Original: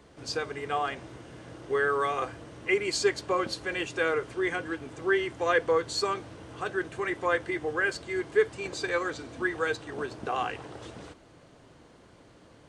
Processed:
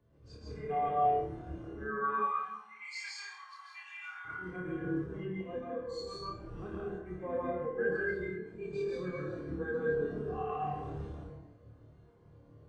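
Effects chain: octave divider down 1 oct, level +2 dB; 2.08–4.25 s: elliptic high-pass 840 Hz, stop band 40 dB; harmonic-percussive split percussive -15 dB; compression 3:1, threshold -38 dBFS, peak gain reduction 15.5 dB; slow attack 174 ms; flutter echo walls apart 4.7 m, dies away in 0.43 s; plate-style reverb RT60 1.3 s, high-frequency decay 0.5×, pre-delay 120 ms, DRR -4.5 dB; spectral contrast expander 1.5:1; trim +1 dB

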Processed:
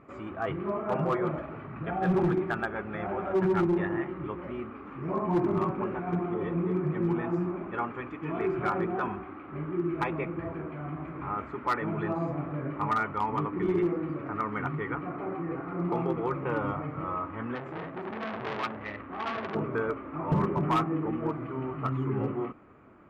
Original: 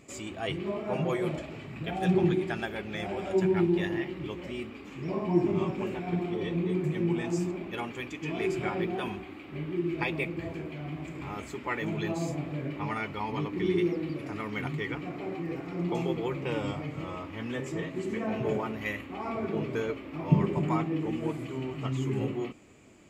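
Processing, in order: resonant low-pass 1.3 kHz, resonance Q 3.4; overload inside the chain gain 20.5 dB; 17.55–19.55 s: transformer saturation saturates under 1.5 kHz

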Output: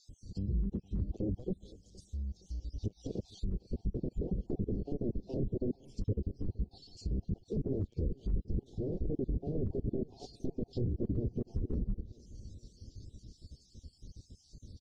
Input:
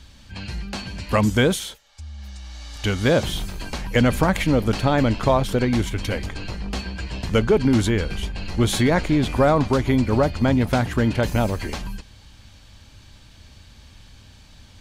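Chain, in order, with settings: random holes in the spectrogram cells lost 51%; wavefolder -21 dBFS; elliptic band-stop 420–5200 Hz, stop band 60 dB; peak limiter -25.5 dBFS, peak gain reduction 6.5 dB; on a send: feedback delay 466 ms, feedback 54%, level -23.5 dB; on the sum: low-pass that closes with the level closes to 730 Hz, closed at -30.5 dBFS; distance through air 60 m; AAC 32 kbps 44.1 kHz

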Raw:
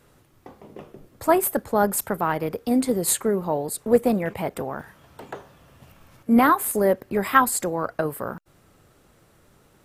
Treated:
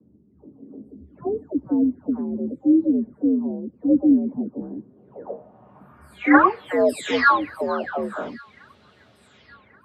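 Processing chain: delay that grows with frequency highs early, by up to 576 ms; low-pass sweep 220 Hz -> 3.8 kHz, 4.66–6.80 s; on a send: feedback echo behind a high-pass 1131 ms, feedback 53%, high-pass 1.9 kHz, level -21 dB; on the sum: frequency shift +62 Hz; trim +2 dB

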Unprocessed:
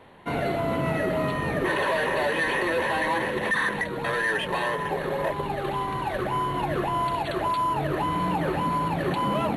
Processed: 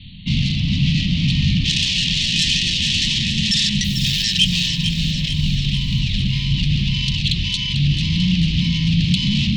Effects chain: Chebyshev low-pass 4.5 kHz, order 8; bass shelf 130 Hz +11 dB; 3.84–4.24 s: short-mantissa float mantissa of 4-bit; sine folder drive 8 dB, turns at -13.5 dBFS; elliptic band-stop 200–3000 Hz, stop band 40 dB; treble shelf 2.2 kHz +8.5 dB; feedback echo behind a high-pass 444 ms, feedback 61%, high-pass 2 kHz, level -8 dB; trim +4 dB

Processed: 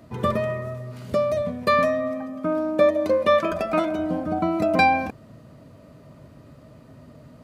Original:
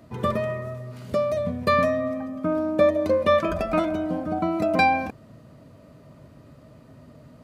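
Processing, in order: 1.42–3.99 s: high-pass 220 Hz 6 dB/octave; trim +1.5 dB

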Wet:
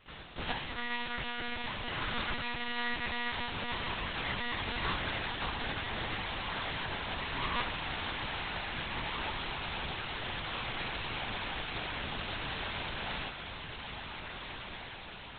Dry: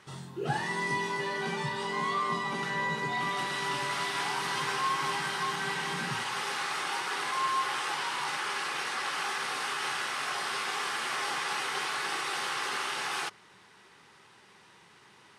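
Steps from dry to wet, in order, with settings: formants flattened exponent 0.1; echo that smears into a reverb 1605 ms, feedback 58%, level -5.5 dB; monotone LPC vocoder at 8 kHz 240 Hz

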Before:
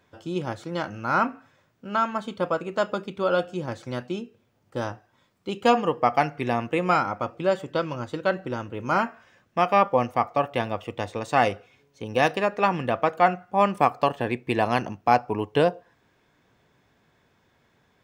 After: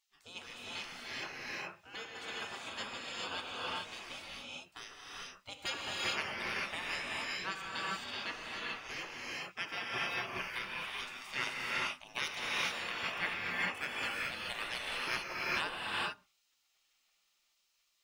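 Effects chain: spectral gate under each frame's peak -20 dB weak; gated-style reverb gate 460 ms rising, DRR -4.5 dB; trim -4 dB

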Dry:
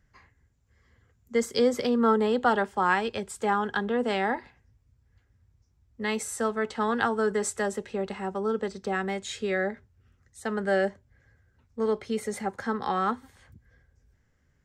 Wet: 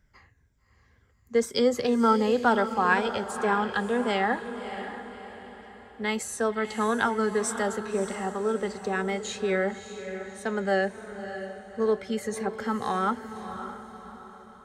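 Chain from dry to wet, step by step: drifting ripple filter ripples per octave 1.6, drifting -2 Hz, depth 7 dB; echo that smears into a reverb 592 ms, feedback 44%, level -10 dB

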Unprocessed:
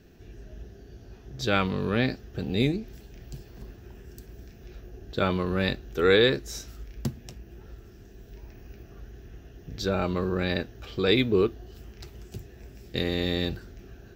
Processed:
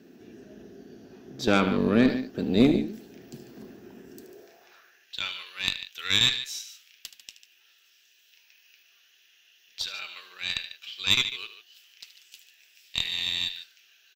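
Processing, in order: loudspeakers at several distances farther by 26 m -12 dB, 50 m -12 dB; high-pass sweep 240 Hz -> 2.9 kHz, 4.13–5.17 s; Chebyshev shaper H 4 -18 dB, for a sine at -7 dBFS

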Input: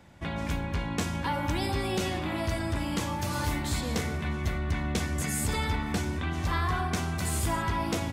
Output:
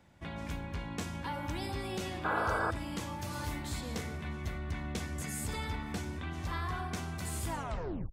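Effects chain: tape stop on the ending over 0.61 s; painted sound noise, 2.24–2.71 s, 400–1700 Hz -24 dBFS; trim -8 dB

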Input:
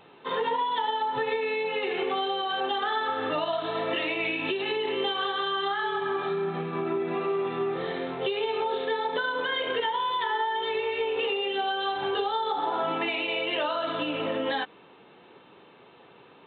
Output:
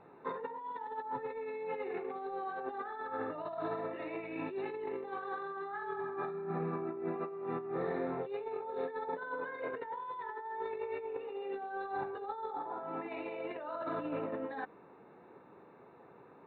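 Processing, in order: compressor with a negative ratio -31 dBFS, ratio -0.5; boxcar filter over 14 samples; trim -6 dB

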